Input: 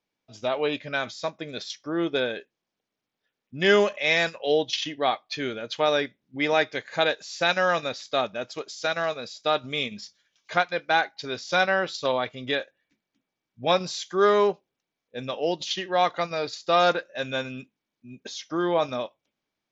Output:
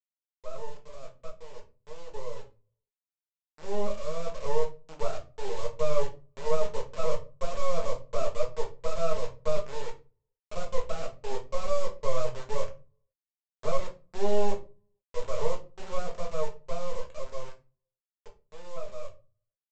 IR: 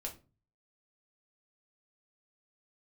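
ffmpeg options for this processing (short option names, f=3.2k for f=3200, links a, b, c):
-filter_complex "[0:a]aeval=exprs='(tanh(28.2*val(0)+0.3)-tanh(0.3))/28.2':c=same,asuperpass=centerf=520:order=8:qfactor=1.9,aresample=16000,acrusher=bits=5:dc=4:mix=0:aa=0.000001,aresample=44100[a];[1:a]atrim=start_sample=2205[b];[a][b]afir=irnorm=-1:irlink=0,dynaudnorm=f=710:g=11:m=12dB,volume=-1.5dB"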